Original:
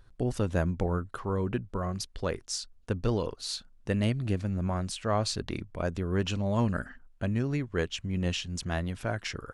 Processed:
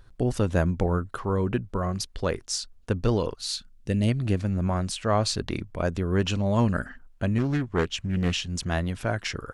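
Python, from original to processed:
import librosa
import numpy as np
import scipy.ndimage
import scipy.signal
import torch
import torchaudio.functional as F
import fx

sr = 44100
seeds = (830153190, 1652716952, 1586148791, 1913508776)

y = fx.peak_eq(x, sr, hz=fx.line((3.33, 390.0), (4.07, 1400.0)), db=-14.5, octaves=1.5, at=(3.33, 4.07), fade=0.02)
y = fx.doppler_dist(y, sr, depth_ms=0.49, at=(7.38, 8.37))
y = y * librosa.db_to_amplitude(4.5)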